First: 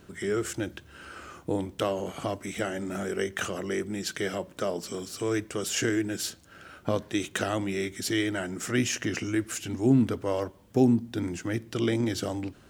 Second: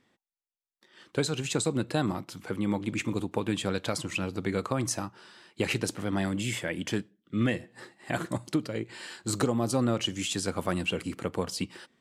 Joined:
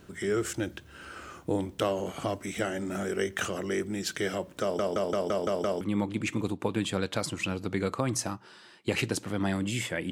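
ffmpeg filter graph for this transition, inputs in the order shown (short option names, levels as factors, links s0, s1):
-filter_complex "[0:a]apad=whole_dur=10.11,atrim=end=10.11,asplit=7[s0][s1][s2][s3][s4][s5][s6];[s0]atrim=end=4.792[s7];[s1]atrim=start=4.618:end=4.792[s8];[s2]atrim=start=4.618:end=4.792[s9];[s3]atrim=start=4.618:end=4.792[s10];[s4]atrim=start=4.618:end=4.792[s11];[s5]atrim=start=4.618:end=4.792[s12];[s6]atrim=start=4.618:end=4.792[s13];[1:a]atrim=start=2.528:end=6.83[s14];[s7][s8]acrossfade=d=0.004:c1=hsin:c2=hsin[s15];[s15][s9]acrossfade=d=0.004:c1=hsin:c2=hsin[s16];[s16][s10]acrossfade=d=0.004:c1=hsin:c2=hsin[s17];[s17][s11]acrossfade=d=0.004:c1=hsin:c2=hsin[s18];[s18][s12]acrossfade=d=0.004:c1=hsin:c2=hsin[s19];[s19][s13]acrossfade=d=0.004:c1=hsin:c2=hsin[s20];[s20][s14]acrossfade=d=0.004:c1=hsin:c2=hsin"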